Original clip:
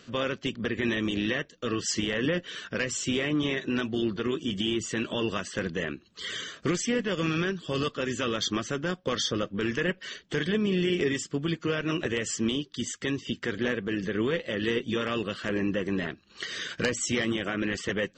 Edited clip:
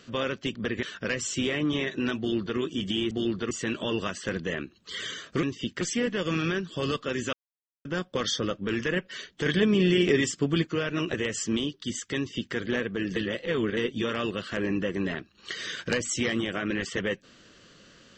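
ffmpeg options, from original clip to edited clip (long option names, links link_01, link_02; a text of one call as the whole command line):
ffmpeg -i in.wav -filter_complex "[0:a]asplit=12[link_01][link_02][link_03][link_04][link_05][link_06][link_07][link_08][link_09][link_10][link_11][link_12];[link_01]atrim=end=0.832[link_13];[link_02]atrim=start=2.528:end=4.812[link_14];[link_03]atrim=start=3.878:end=4.282[link_15];[link_04]atrim=start=4.808:end=6.732[link_16];[link_05]atrim=start=13.088:end=13.472[link_17];[link_06]atrim=start=6.728:end=8.25,asetpts=PTS-STARTPTS,afade=type=out:start_time=1.518:duration=0.004:curve=hsin[link_18];[link_07]atrim=start=8.25:end=8.77,asetpts=PTS-STARTPTS,volume=0[link_19];[link_08]atrim=start=8.77:end=10.382,asetpts=PTS-STARTPTS,afade=type=in:duration=0.004:curve=hsin[link_20];[link_09]atrim=start=10.378:end=11.592,asetpts=PTS-STARTPTS,volume=4dB[link_21];[link_10]atrim=start=11.588:end=14.082[link_22];[link_11]atrim=start=14.078:end=14.692,asetpts=PTS-STARTPTS,areverse[link_23];[link_12]atrim=start=14.688[link_24];[link_13][link_14]acrossfade=duration=0.004:curve1=hsin:curve2=hsin[link_25];[link_25][link_15]acrossfade=duration=0.004:curve1=hsin:curve2=hsin[link_26];[link_26][link_16]acrossfade=duration=0.004:curve1=hsin:curve2=hsin[link_27];[link_27][link_17]acrossfade=duration=0.004:curve1=hsin:curve2=hsin[link_28];[link_18][link_19][link_20]concat=n=3:v=0:a=1[link_29];[link_28][link_29]acrossfade=duration=0.004:curve1=hsin:curve2=hsin[link_30];[link_30][link_21]acrossfade=duration=0.004:curve1=hsin:curve2=hsin[link_31];[link_31][link_22]acrossfade=duration=0.004:curve1=hsin:curve2=hsin[link_32];[link_32][link_23]acrossfade=duration=0.004:curve1=hsin:curve2=hsin[link_33];[link_33][link_24]acrossfade=duration=0.004:curve1=hsin:curve2=hsin" out.wav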